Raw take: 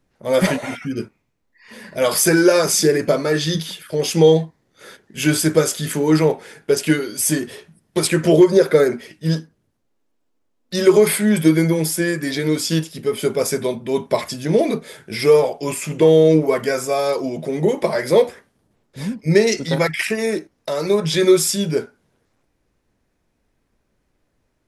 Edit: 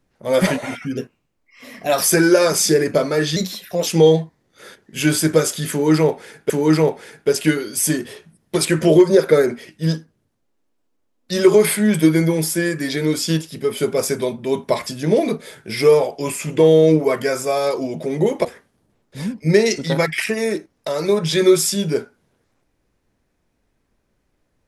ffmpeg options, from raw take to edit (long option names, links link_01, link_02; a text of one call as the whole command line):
ffmpeg -i in.wav -filter_complex "[0:a]asplit=7[link_01][link_02][link_03][link_04][link_05][link_06][link_07];[link_01]atrim=end=0.974[link_08];[link_02]atrim=start=0.97:end=2.16,asetpts=PTS-STARTPTS,asetrate=49833,aresample=44100[link_09];[link_03]atrim=start=2.156:end=3.504[link_10];[link_04]atrim=start=3.5:end=4.08,asetpts=PTS-STARTPTS,asetrate=50715,aresample=44100[link_11];[link_05]atrim=start=4.076:end=6.712[link_12];[link_06]atrim=start=5.918:end=17.872[link_13];[link_07]atrim=start=18.258[link_14];[link_08][link_09]acrossfade=duration=0.004:curve1=hsin:curve2=hsin[link_15];[link_15][link_10]acrossfade=duration=0.004:curve1=hsin:curve2=hsin[link_16];[link_16][link_11]acrossfade=duration=0.004:curve1=hsin:curve2=hsin[link_17];[link_17][link_12]acrossfade=duration=0.004:curve1=hsin:curve2=hsin[link_18];[link_18][link_13]acrossfade=duration=0.004:curve1=hsin:curve2=hsin[link_19];[link_19][link_14]acrossfade=duration=0.004:curve1=hsin:curve2=hsin" out.wav